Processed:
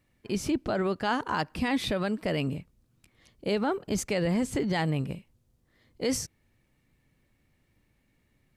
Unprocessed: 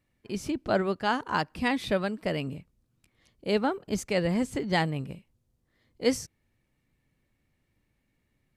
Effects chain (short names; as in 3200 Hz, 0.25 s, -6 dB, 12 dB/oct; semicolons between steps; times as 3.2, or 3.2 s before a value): limiter -22.5 dBFS, peak gain reduction 11 dB; gain +4.5 dB